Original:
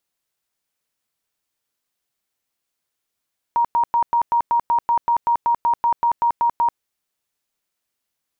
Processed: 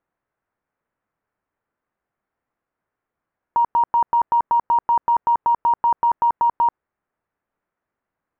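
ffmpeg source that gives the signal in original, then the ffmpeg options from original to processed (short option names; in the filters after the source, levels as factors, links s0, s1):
-f lavfi -i "aevalsrc='0.2*sin(2*PI*942*mod(t,0.19))*lt(mod(t,0.19),82/942)':d=3.23:s=44100"
-af "lowpass=f=1700:w=0.5412,lowpass=f=1700:w=1.3066,alimiter=limit=0.106:level=0:latency=1:release=47,acontrast=72"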